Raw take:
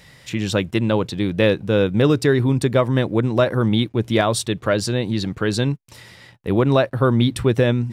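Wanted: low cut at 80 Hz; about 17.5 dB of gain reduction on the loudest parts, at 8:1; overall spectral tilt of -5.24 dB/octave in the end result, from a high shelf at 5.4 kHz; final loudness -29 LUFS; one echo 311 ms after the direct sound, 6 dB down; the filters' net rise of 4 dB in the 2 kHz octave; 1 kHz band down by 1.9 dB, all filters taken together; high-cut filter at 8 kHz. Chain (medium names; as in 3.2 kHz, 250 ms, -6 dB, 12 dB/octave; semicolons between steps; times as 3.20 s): high-pass 80 Hz; low-pass 8 kHz; peaking EQ 1 kHz -5 dB; peaking EQ 2 kHz +8 dB; treble shelf 5.4 kHz -7.5 dB; compression 8:1, threshold -31 dBFS; delay 311 ms -6 dB; trim +5.5 dB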